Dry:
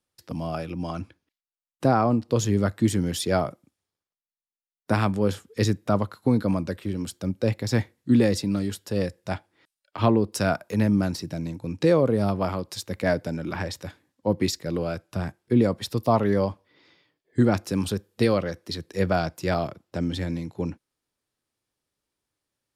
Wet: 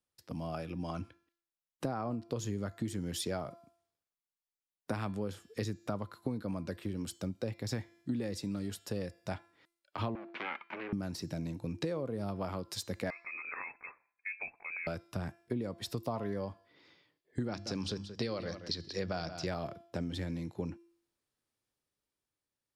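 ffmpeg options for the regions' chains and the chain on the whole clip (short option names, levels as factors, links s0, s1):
-filter_complex "[0:a]asettb=1/sr,asplit=3[s0][s1][s2];[s0]atrim=end=10.154[s3];[s1]atrim=start=10.15:end=10.93,asetpts=PTS-STARTPTS,afade=t=in:d=0.004:c=qsin,afade=t=out:st=0.776:d=0.004:c=qsin,acompressor=threshold=0.0562:ratio=3:attack=3.2:release=140:knee=1:detection=peak,aeval=exprs='abs(val(0))':c=same,highpass=f=230:w=0.5412,highpass=f=230:w=1.3066,equalizer=f=300:t=q:w=4:g=-6,equalizer=f=470:t=q:w=4:g=-7,equalizer=f=690:t=q:w=4:g=-7,equalizer=f=1100:t=q:w=4:g=4,equalizer=f=1600:t=q:w=4:g=4,equalizer=f=2300:t=q:w=4:g=8,lowpass=f=3100:w=0.5412,lowpass=f=3100:w=1.3066[s4];[s2]atrim=start=10.926[s5];[s3][s4]acrossfade=d=0.004:c1=hsin:c2=qsin[s6];[s6][s5]acrossfade=d=0.004:c1=qsin:c2=hsin,asettb=1/sr,asplit=3[s7][s8][s9];[s7]atrim=end=13.104[s10];[s8]atrim=start=13.1:end=14.87,asetpts=PTS-STARTPTS,afade=t=in:d=0.004:c=qsin,afade=t=out:st=1.766:d=0.004:c=qsin,lowshelf=f=420:g=-11.5,acompressor=threshold=0.0224:ratio=2.5:attack=3.2:release=140:knee=1:detection=peak,lowpass=f=2300:t=q:w=0.5098,lowpass=f=2300:t=q:w=0.6013,lowpass=f=2300:t=q:w=0.9,lowpass=f=2300:t=q:w=2.563,afreqshift=-2700[s11];[s9]atrim=start=14.866[s12];[s10][s11]acrossfade=d=0.004:c1=hsin:c2=qsin[s13];[s13][s12]acrossfade=d=0.004:c1=qsin:c2=hsin,asettb=1/sr,asplit=3[s14][s15][s16];[s14]atrim=end=17.484[s17];[s15]atrim=start=17.48:end=19.47,asetpts=PTS-STARTPTS,afade=t=in:d=0.004:c=qsin,afade=t=out:st=1.986:d=0.004:c=qsin,lowpass=f=5100:t=q:w=2.6,bandreject=f=50:t=h:w=6,bandreject=f=100:t=h:w=6,bandreject=f=150:t=h:w=6,bandreject=f=200:t=h:w=6,bandreject=f=250:t=h:w=6,bandreject=f=300:t=h:w=6,aecho=1:1:178:0.168,atrim=end_sample=87759[s18];[s16]atrim=start=19.466[s19];[s17][s18]acrossfade=d=0.004:c1=hsin:c2=qsin[s20];[s20][s19]acrossfade=d=0.004:c1=qsin:c2=hsin,dynaudnorm=f=110:g=17:m=1.58,bandreject=f=340.7:t=h:w=4,bandreject=f=681.4:t=h:w=4,bandreject=f=1022.1:t=h:w=4,bandreject=f=1362.8:t=h:w=4,bandreject=f=1703.5:t=h:w=4,bandreject=f=2044.2:t=h:w=4,bandreject=f=2384.9:t=h:w=4,bandreject=f=2725.6:t=h:w=4,bandreject=f=3066.3:t=h:w=4,bandreject=f=3407:t=h:w=4,bandreject=f=3747.7:t=h:w=4,bandreject=f=4088.4:t=h:w=4,bandreject=f=4429.1:t=h:w=4,bandreject=f=4769.8:t=h:w=4,bandreject=f=5110.5:t=h:w=4,bandreject=f=5451.2:t=h:w=4,bandreject=f=5791.9:t=h:w=4,bandreject=f=6132.6:t=h:w=4,bandreject=f=6473.3:t=h:w=4,bandreject=f=6814:t=h:w=4,bandreject=f=7154.7:t=h:w=4,bandreject=f=7495.4:t=h:w=4,bandreject=f=7836.1:t=h:w=4,bandreject=f=8176.8:t=h:w=4,acompressor=threshold=0.0562:ratio=6,volume=0.398"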